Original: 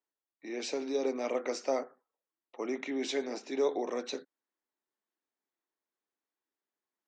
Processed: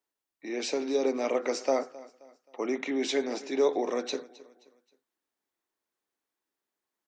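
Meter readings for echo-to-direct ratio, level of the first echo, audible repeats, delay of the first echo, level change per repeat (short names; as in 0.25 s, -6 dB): -19.5 dB, -20.0 dB, 2, 0.264 s, -8.0 dB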